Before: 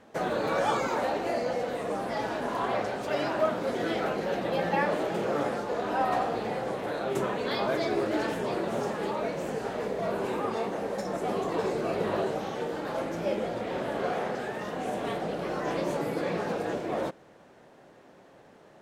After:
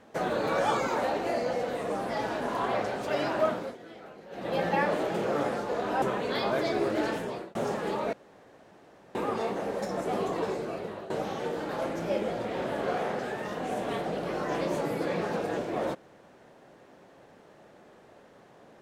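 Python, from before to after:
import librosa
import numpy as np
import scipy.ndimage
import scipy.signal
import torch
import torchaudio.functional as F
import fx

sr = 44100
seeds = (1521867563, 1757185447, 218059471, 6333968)

y = fx.edit(x, sr, fx.fade_down_up(start_s=3.5, length_s=1.07, db=-17.5, fade_s=0.27),
    fx.cut(start_s=6.02, length_s=1.16),
    fx.fade_out_span(start_s=8.12, length_s=0.59, curve='qsin'),
    fx.room_tone_fill(start_s=9.29, length_s=1.02),
    fx.fade_out_to(start_s=11.42, length_s=0.84, floor_db=-16.0), tone=tone)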